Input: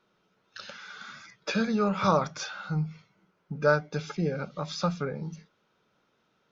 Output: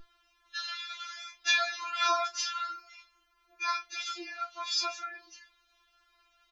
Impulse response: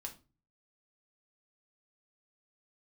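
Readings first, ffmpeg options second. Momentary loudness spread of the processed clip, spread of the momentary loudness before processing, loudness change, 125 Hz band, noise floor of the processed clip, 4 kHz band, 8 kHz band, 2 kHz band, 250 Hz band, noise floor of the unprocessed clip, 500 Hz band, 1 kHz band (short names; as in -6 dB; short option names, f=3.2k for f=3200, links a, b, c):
14 LU, 18 LU, -3.0 dB, under -40 dB, -71 dBFS, +7.5 dB, n/a, +1.5 dB, -25.0 dB, -72 dBFS, -14.5 dB, -1.0 dB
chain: -filter_complex "[0:a]highpass=1.1k,aeval=exprs='val(0)+0.00355*(sin(2*PI*50*n/s)+sin(2*PI*2*50*n/s)/2+sin(2*PI*3*50*n/s)/3+sin(2*PI*4*50*n/s)/4+sin(2*PI*5*50*n/s)/5)':c=same,asplit=2[a][b];[b]aecho=0:1:22|47:0.398|0.133[c];[a][c]amix=inputs=2:normalize=0,afftfilt=real='re*4*eq(mod(b,16),0)':imag='im*4*eq(mod(b,16),0)':win_size=2048:overlap=0.75,volume=8.5dB"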